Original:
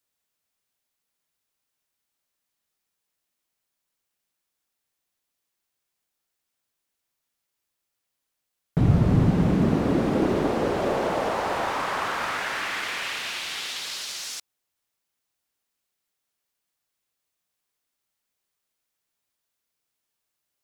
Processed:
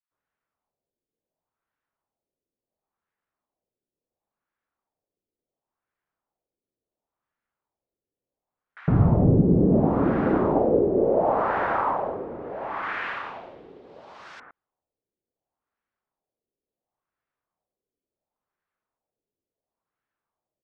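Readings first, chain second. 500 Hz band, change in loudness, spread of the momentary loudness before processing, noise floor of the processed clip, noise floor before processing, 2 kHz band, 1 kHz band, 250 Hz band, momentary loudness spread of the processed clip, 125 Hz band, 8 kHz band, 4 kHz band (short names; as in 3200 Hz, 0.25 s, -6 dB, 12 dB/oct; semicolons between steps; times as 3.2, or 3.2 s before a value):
+4.0 dB, +2.5 dB, 10 LU, under -85 dBFS, -82 dBFS, -4.0 dB, +1.5 dB, +1.5 dB, 15 LU, +0.5 dB, under -30 dB, under -15 dB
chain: bands offset in time highs, lows 0.11 s, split 1500 Hz; LFO low-pass sine 0.71 Hz 400–1600 Hz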